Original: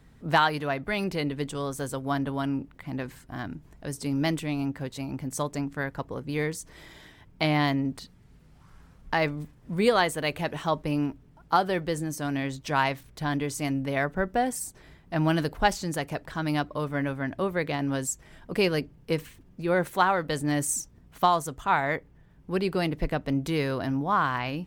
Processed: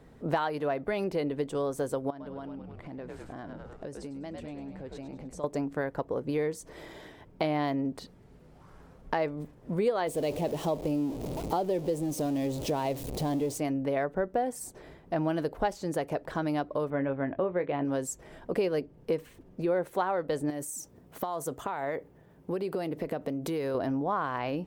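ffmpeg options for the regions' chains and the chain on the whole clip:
-filter_complex "[0:a]asettb=1/sr,asplit=3[a][b][c];[a]atrim=end=2.104[d];[b]atrim=start=2.1:end=5.44,asetpts=PTS-STARTPTS,afade=t=in:d=0.004:c=qsin,afade=t=out:st=3.336:d=0.004:c=qsin,lowpass=8.2k,asplit=7[e][f][g][h][i][j][k];[f]adelay=101,afreqshift=-87,volume=-7dB[l];[g]adelay=202,afreqshift=-174,volume=-13.6dB[m];[h]adelay=303,afreqshift=-261,volume=-20.1dB[n];[i]adelay=404,afreqshift=-348,volume=-26.7dB[o];[j]adelay=505,afreqshift=-435,volume=-33.2dB[p];[k]adelay=606,afreqshift=-522,volume=-39.8dB[q];[e][l][m][n][o][p][q]amix=inputs=7:normalize=0,atrim=end_sample=147294,acompressor=threshold=-40dB:ratio=16:attack=3.2:release=140:knee=1:detection=peak[r];[c]atrim=start=5.436[s];[d][r]acrossfade=d=0.004:c1=hsin:c2=qsin[t];[t][s]acrossfade=d=0.004:c1=qsin:c2=hsin,asettb=1/sr,asplit=3[u][v][w];[u]atrim=end=10.074[x];[v]atrim=start=10.07:end=13.58,asetpts=PTS-STARTPTS,afade=t=in:d=0.004:c=qsin,afade=t=out:st=3.506:d=0.004:c=qsin,aeval=exprs='val(0)+0.5*0.0335*sgn(val(0))':c=same,equalizer=f=1.5k:w=1.1:g=-14,acrusher=bits=8:mix=0:aa=0.5[y];[w]atrim=start=13.576[z];[x][y]acrossfade=d=0.004:c1=hsin:c2=qsin[aa];[aa][z]acrossfade=d=0.004:c1=qsin:c2=hsin,asettb=1/sr,asplit=3[ab][ac][ad];[ab]atrim=end=16.904[ae];[ac]atrim=start=16.9:end=17.85,asetpts=PTS-STARTPTS,afade=t=in:d=0.004:c=qsin,afade=t=out:st=0.946:d=0.004:c=qsin,lowpass=f=3.1k:w=0.5412,lowpass=f=3.1k:w=1.3066,asplit=2[af][ag];[ag]adelay=22,volume=-11dB[ah];[af][ah]amix=inputs=2:normalize=0,atrim=end_sample=41895[ai];[ad]atrim=start=17.846[aj];[ae][ai]acrossfade=d=0.004:c1=hsin:c2=qsin[ak];[ak][aj]acrossfade=d=0.004:c1=qsin:c2=hsin,asettb=1/sr,asplit=3[al][am][an];[al]atrim=end=20.504[ao];[am]atrim=start=20.5:end=23.75,asetpts=PTS-STARTPTS,afade=t=in:d=0.004:c=qsin,afade=t=out:st=3.246:d=0.004:c=qsin,highpass=79,highshelf=f=9.1k:g=10.5,acompressor=threshold=-31dB:ratio=10:attack=3.2:release=140:knee=1:detection=peak[ap];[an]atrim=start=23.746[aq];[ao][ap]acrossfade=d=0.004:c1=hsin:c2=qsin[ar];[ar][aq]acrossfade=d=0.004:c1=qsin:c2=hsin,equalizer=f=500:t=o:w=2:g=13,acompressor=threshold=-26dB:ratio=3,volume=-3dB"

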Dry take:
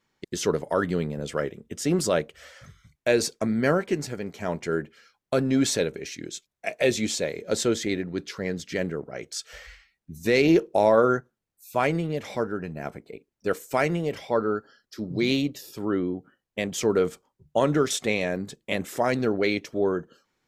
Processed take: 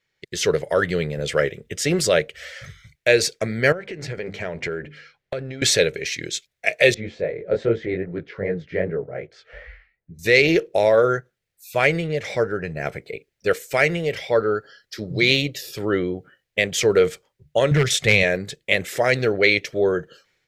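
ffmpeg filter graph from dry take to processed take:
-filter_complex "[0:a]asettb=1/sr,asplit=3[a][b][c];[a]atrim=end=3.724[d];[b]atrim=start=3.72:end=5.62,asetpts=PTS-STARTPTS,afade=t=in:d=0.004:c=qsin,afade=t=out:st=1.896:d=0.004:c=qsin,aemphasis=mode=reproduction:type=75kf,bandreject=f=50:t=h:w=6,bandreject=f=100:t=h:w=6,bandreject=f=150:t=h:w=6,bandreject=f=200:t=h:w=6,bandreject=f=250:t=h:w=6,bandreject=f=300:t=h:w=6,acompressor=threshold=-31dB:ratio=12:attack=3.2:release=140:knee=1:detection=peak[e];[c]atrim=start=5.616[f];[d][e]acrossfade=d=0.004:c1=hsin:c2=qsin[g];[g][f]acrossfade=d=0.004:c1=qsin:c2=hsin,asettb=1/sr,asplit=3[h][i][j];[h]atrim=end=6.944[k];[i]atrim=start=6.94:end=10.19,asetpts=PTS-STARTPTS,afade=t=in:d=0.004:c=qsin,afade=t=out:st=3.246:d=0.004:c=qsin,lowpass=1.1k,flanger=delay=17:depth=6.2:speed=2.5[l];[j]atrim=start=10.186[m];[k][l]acrossfade=d=0.004:c1=hsin:c2=qsin[n];[n][m]acrossfade=d=0.004:c1=qsin:c2=hsin,asettb=1/sr,asplit=3[o][p][q];[o]atrim=end=12.044[r];[p]atrim=start=12.04:end=12.86,asetpts=PTS-STARTPTS,afade=t=in:d=0.004:c=qsin,afade=t=out:st=0.816:d=0.004:c=qsin,lowpass=10k,equalizer=f=3.2k:t=o:w=0.96:g=-4.5[s];[q]atrim=start=12.856[t];[r][s]acrossfade=d=0.004:c1=hsin:c2=qsin[u];[u][t]acrossfade=d=0.004:c1=qsin:c2=hsin,asettb=1/sr,asplit=3[v][w][x];[v]atrim=end=17.714[y];[w]atrim=start=17.71:end=18.23,asetpts=PTS-STARTPTS,afade=t=in:d=0.004:c=qsin,afade=t=out:st=0.516:d=0.004:c=qsin,lowshelf=f=210:t=q:w=1.5:g=8,aeval=exprs='0.211*(abs(mod(val(0)/0.211+3,4)-2)-1)':c=same[z];[x]atrim=start=18.226[aa];[y][z]acrossfade=d=0.004:c1=hsin:c2=qsin[ab];[ab][aa]acrossfade=d=0.004:c1=qsin:c2=hsin,dynaudnorm=f=140:g=5:m=13dB,equalizer=f=125:t=o:w=1:g=4,equalizer=f=250:t=o:w=1:g=-11,equalizer=f=500:t=o:w=1:g=6,equalizer=f=1k:t=o:w=1:g=-9,equalizer=f=2k:t=o:w=1:g=9,equalizer=f=4k:t=o:w=1:g=4,volume=-4.5dB"

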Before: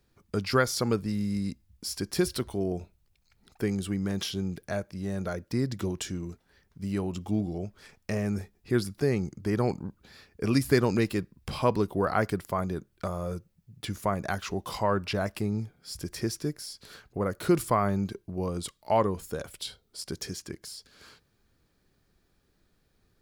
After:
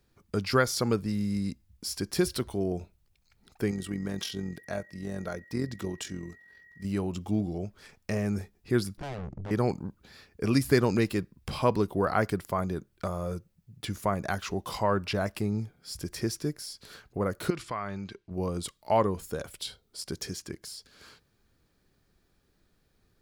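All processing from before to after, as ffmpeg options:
-filter_complex "[0:a]asettb=1/sr,asplit=3[a][b][c];[a]atrim=end=3.714[d];[b]atrim=start=3.71:end=6.85,asetpts=PTS-STARTPTS,afade=t=in:d=0.004:c=qsin,afade=t=out:st=3.136:d=0.004:c=qsin,lowshelf=f=71:g=-10,aeval=exprs='val(0)+0.00282*sin(2*PI*1900*n/s)':c=same,tremolo=f=44:d=0.519[e];[c]atrim=start=6.846[f];[d][e]acrossfade=d=0.004:c1=hsin:c2=qsin[g];[g][f]acrossfade=d=0.004:c1=qsin:c2=hsin,asettb=1/sr,asplit=3[h][i][j];[h]atrim=end=8.974[k];[i]atrim=start=8.97:end=9.51,asetpts=PTS-STARTPTS,afade=t=in:d=0.004:c=qsin,afade=t=out:st=0.536:d=0.004:c=qsin,aemphasis=mode=reproduction:type=riaa,aeval=exprs='0.141*(abs(mod(val(0)/0.141+3,4)-2)-1)':c=same,aeval=exprs='(tanh(56.2*val(0)+0.6)-tanh(0.6))/56.2':c=same[l];[j]atrim=start=9.506[m];[k][l]acrossfade=d=0.004:c1=hsin:c2=qsin[n];[n][m]acrossfade=d=0.004:c1=qsin:c2=hsin,asettb=1/sr,asplit=3[o][p][q];[o]atrim=end=17.504[r];[p]atrim=start=17.5:end=18.31,asetpts=PTS-STARTPTS,afade=t=in:d=0.004:c=qsin,afade=t=out:st=0.806:d=0.004:c=qsin,lowpass=3.2k,tiltshelf=f=1.4k:g=-8,acompressor=threshold=-33dB:ratio=2:attack=3.2:release=140:knee=1:detection=peak[s];[q]atrim=start=18.306[t];[r][s]acrossfade=d=0.004:c1=hsin:c2=qsin[u];[u][t]acrossfade=d=0.004:c1=qsin:c2=hsin"

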